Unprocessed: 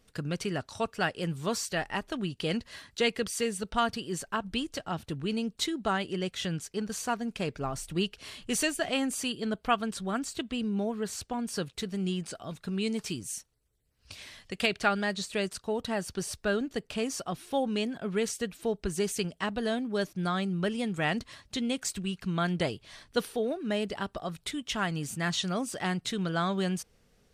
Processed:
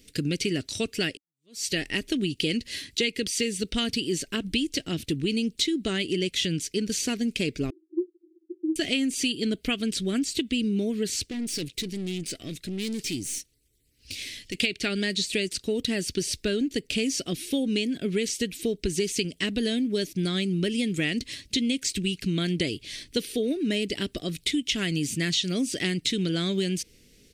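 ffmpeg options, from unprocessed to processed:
-filter_complex "[0:a]asettb=1/sr,asplit=3[s0][s1][s2];[s0]atrim=end=7.704[s3];[s1]atrim=start=7.7:end=8.76,asetpts=PTS-STARTPTS,afade=t=in:d=0.004:c=qsin,afade=t=out:st=1.056:d=0.004:c=qsin,asuperpass=centerf=340:order=8:qfactor=6.4[s4];[s2]atrim=start=8.756[s5];[s3][s4]acrossfade=d=0.004:c1=hsin:c2=qsin[s6];[s6][s5]acrossfade=d=0.004:c1=qsin:c2=hsin,asettb=1/sr,asplit=3[s7][s8][s9];[s7]atrim=end=11.294[s10];[s8]atrim=start=11.29:end=14.55,asetpts=PTS-STARTPTS,afade=t=in:d=0.004:c=qsin,afade=t=out:st=3.256:d=0.004:c=qsin,aeval=exprs='(tanh(70.8*val(0)+0.4)-tanh(0.4))/70.8':c=same[s11];[s9]atrim=start=14.546[s12];[s10][s11]acrossfade=d=0.004:c1=hsin:c2=qsin[s13];[s13][s12]acrossfade=d=0.004:c1=qsin:c2=hsin,asplit=2[s14][s15];[s14]atrim=end=1.17,asetpts=PTS-STARTPTS,afade=t=out:st=1.166:d=0.004:c=hsin[s16];[s15]atrim=start=1.17,asetpts=PTS-STARTPTS,afade=t=in:d=0.49:c=exp[s17];[s16][s17]concat=n=2:v=0:a=1,acrossover=split=5900[s18][s19];[s19]acompressor=threshold=0.00447:ratio=4:attack=1:release=60[s20];[s18][s20]amix=inputs=2:normalize=0,firequalizer=gain_entry='entry(200,0);entry(290,8);entry(830,-20);entry(1200,-16);entry(2100,5);entry(4600,7)':delay=0.05:min_phase=1,acompressor=threshold=0.0355:ratio=6,volume=2.11"

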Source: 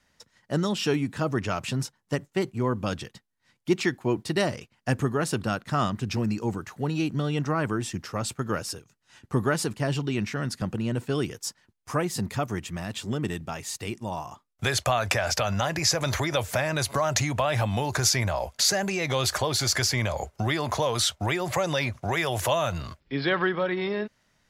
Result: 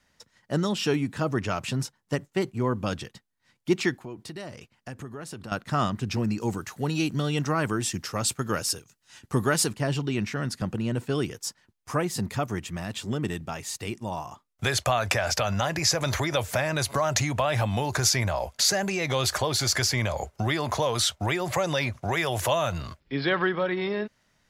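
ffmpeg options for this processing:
-filter_complex "[0:a]asettb=1/sr,asplit=3[s0][s1][s2];[s0]atrim=end=3.944[s3];[s1]atrim=start=3.94:end=5.52,asetpts=PTS-STARTPTS,afade=t=in:d=0.004:c=qsin,afade=t=out:st=1.576:d=0.004:c=qsin,acompressor=threshold=0.0112:ratio=3:attack=3.2:release=140:knee=1:detection=peak[s4];[s2]atrim=start=5.516[s5];[s3][s4]acrossfade=d=0.004:c1=hsin:c2=qsin[s6];[s6][s5]acrossfade=d=0.004:c1=qsin:c2=hsin,asettb=1/sr,asplit=3[s7][s8][s9];[s7]atrim=end=6.404[s10];[s8]atrim=start=6.4:end=9.71,asetpts=PTS-STARTPTS,afade=t=in:d=0.004:c=qsin,afade=t=out:st=3.306:d=0.004:c=qsin,highshelf=f=3100:g=8.5[s11];[s9]atrim=start=9.706[s12];[s10][s11]acrossfade=d=0.004:c1=hsin:c2=qsin[s13];[s13][s12]acrossfade=d=0.004:c1=qsin:c2=hsin"

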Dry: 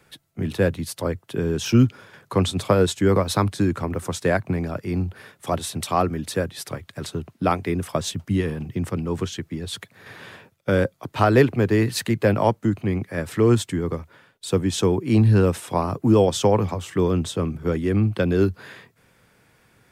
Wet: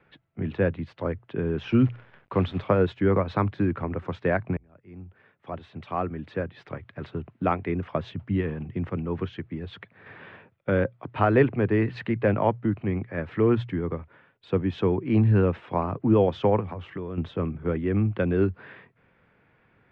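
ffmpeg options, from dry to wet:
-filter_complex "[0:a]asettb=1/sr,asplit=3[s0][s1][s2];[s0]atrim=end=1.584[s3];[s1]atrim=start=1.58:end=2.64,asetpts=PTS-STARTPTS,afade=t=in:d=0.004:c=qsin,afade=t=out:st=1.056:d=0.004:c=qsin,acrusher=bits=7:dc=4:mix=0:aa=0.000001[s4];[s2]atrim=start=2.636[s5];[s3][s4]acrossfade=d=0.004:c1=hsin:c2=qsin[s6];[s6][s5]acrossfade=d=0.004:c1=qsin:c2=hsin,asettb=1/sr,asplit=3[s7][s8][s9];[s7]atrim=end=16.604[s10];[s8]atrim=start=16.6:end=17.18,asetpts=PTS-STARTPTS,afade=t=in:d=0.004:c=qsin,afade=t=out:st=0.576:d=0.004:c=qsin,acompressor=threshold=0.0501:ratio=6:attack=3.2:release=140:knee=1:detection=peak[s11];[s9]atrim=start=17.176[s12];[s10][s11]acrossfade=d=0.004:c1=hsin:c2=qsin[s13];[s13][s12]acrossfade=d=0.004:c1=qsin:c2=hsin,asplit=2[s14][s15];[s14]atrim=end=4.57,asetpts=PTS-STARTPTS,afade=t=out:st=4.566:d=0.004:c=hsin[s16];[s15]atrim=start=4.57,asetpts=PTS-STARTPTS,afade=t=in:d=2.28[s17];[s16][s17]concat=n=2:v=0:a=1,lowpass=f=2700:w=0.5412,lowpass=f=2700:w=1.3066,bandreject=f=60:t=h:w=6,bandreject=f=120:t=h:w=6,volume=0.668"

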